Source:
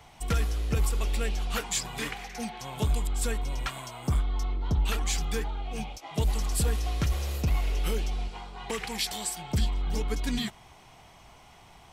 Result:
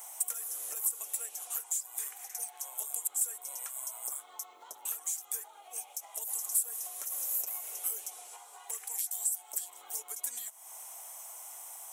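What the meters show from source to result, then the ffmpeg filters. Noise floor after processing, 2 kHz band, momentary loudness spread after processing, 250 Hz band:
-55 dBFS, -17.0 dB, 13 LU, under -35 dB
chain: -af "highpass=f=570:w=0.5412,highpass=f=570:w=1.3066,equalizer=f=2.5k:t=o:w=1.2:g=-5,acompressor=threshold=-50dB:ratio=8,aexciter=amount=11.6:drive=7.6:freq=6.8k,asoftclip=type=hard:threshold=-19.5dB"

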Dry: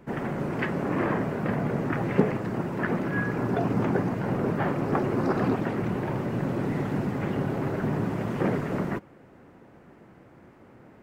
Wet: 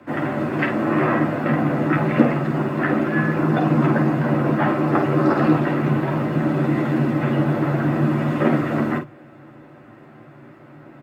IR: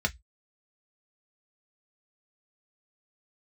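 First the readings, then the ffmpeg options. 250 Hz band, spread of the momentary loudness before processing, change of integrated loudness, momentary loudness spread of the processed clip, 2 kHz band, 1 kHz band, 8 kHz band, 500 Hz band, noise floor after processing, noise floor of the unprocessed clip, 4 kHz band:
+8.5 dB, 4 LU, +8.0 dB, 4 LU, +8.0 dB, +8.0 dB, n/a, +6.0 dB, -45 dBFS, -53 dBFS, +7.5 dB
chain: -filter_complex "[0:a]aecho=1:1:11|51:0.631|0.447,afreqshift=39,asplit=2[a][b];[1:a]atrim=start_sample=2205,asetrate=88200,aresample=44100[c];[b][c]afir=irnorm=-1:irlink=0,volume=-6.5dB[d];[a][d]amix=inputs=2:normalize=0,volume=3.5dB"

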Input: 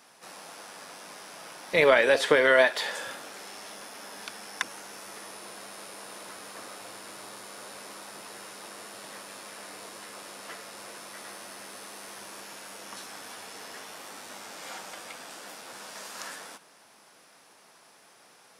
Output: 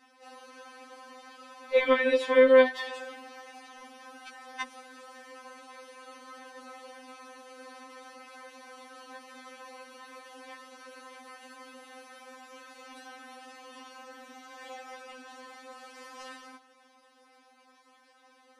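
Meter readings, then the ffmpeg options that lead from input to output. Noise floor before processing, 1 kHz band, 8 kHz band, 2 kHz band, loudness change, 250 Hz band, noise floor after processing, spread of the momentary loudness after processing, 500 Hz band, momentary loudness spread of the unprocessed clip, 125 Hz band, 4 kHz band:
-57 dBFS, -3.0 dB, -13.5 dB, -6.0 dB, +5.5 dB, +3.0 dB, -62 dBFS, 22 LU, +1.0 dB, 21 LU, under -20 dB, -7.0 dB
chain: -af "aemphasis=mode=reproduction:type=75fm,afftfilt=real='re*3.46*eq(mod(b,12),0)':imag='im*3.46*eq(mod(b,12),0)':win_size=2048:overlap=0.75"

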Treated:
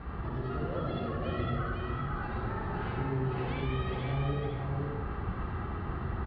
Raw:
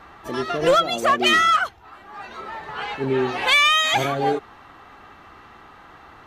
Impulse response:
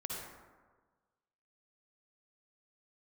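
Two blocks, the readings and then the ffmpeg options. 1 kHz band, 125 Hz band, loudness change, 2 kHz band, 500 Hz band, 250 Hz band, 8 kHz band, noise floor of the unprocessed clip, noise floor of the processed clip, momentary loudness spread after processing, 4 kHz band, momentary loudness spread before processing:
-16.0 dB, +5.0 dB, -15.5 dB, -20.0 dB, -13.0 dB, -6.0 dB, under -40 dB, -47 dBFS, -38 dBFS, 4 LU, -27.0 dB, 19 LU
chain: -filter_complex "[0:a]asplit=2[a][b];[b]acrusher=samples=37:mix=1:aa=0.000001,volume=-9dB[c];[a][c]amix=inputs=2:normalize=0,acompressor=threshold=-30dB:ratio=6,bass=f=250:g=5,treble=f=4k:g=-7,alimiter=level_in=8.5dB:limit=-24dB:level=0:latency=1,volume=-8.5dB,aresample=11025,aresample=44100,highpass=52,aemphasis=mode=reproduction:type=bsi,aecho=1:1:503:0.708[d];[1:a]atrim=start_sample=2205[e];[d][e]afir=irnorm=-1:irlink=0"

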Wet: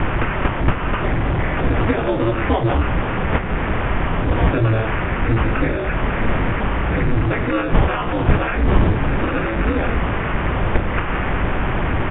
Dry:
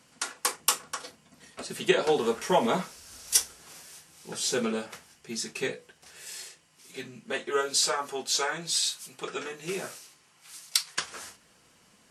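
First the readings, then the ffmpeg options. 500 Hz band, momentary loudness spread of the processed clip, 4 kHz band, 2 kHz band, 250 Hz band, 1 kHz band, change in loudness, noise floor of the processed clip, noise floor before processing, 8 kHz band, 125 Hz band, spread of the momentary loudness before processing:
+8.5 dB, 3 LU, -3.0 dB, +13.0 dB, +15.5 dB, +12.0 dB, +8.5 dB, -22 dBFS, -62 dBFS, under -40 dB, +28.0 dB, 21 LU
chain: -filter_complex "[0:a]aeval=exprs='val(0)+0.5*0.0596*sgn(val(0))':c=same,equalizer=f=1.9k:w=0.59:g=7,bandreject=f=50:t=h:w=6,bandreject=f=100:t=h:w=6,bandreject=f=150:t=h:w=6,bandreject=f=200:t=h:w=6,bandreject=f=250:t=h:w=6,bandreject=f=300:t=h:w=6,bandreject=f=350:t=h:w=6,bandreject=f=400:t=h:w=6,bandreject=f=450:t=h:w=6,acompressor=threshold=-24dB:ratio=3,apsyclip=15.5dB,acrusher=samples=11:mix=1:aa=0.000001,aeval=exprs='val(0)*sin(2*PI*110*n/s)':c=same,asplit=2[a][b];[b]aecho=0:1:198:0.075[c];[a][c]amix=inputs=2:normalize=0,aresample=8000,aresample=44100,aemphasis=mode=reproduction:type=riaa,volume=-8.5dB"

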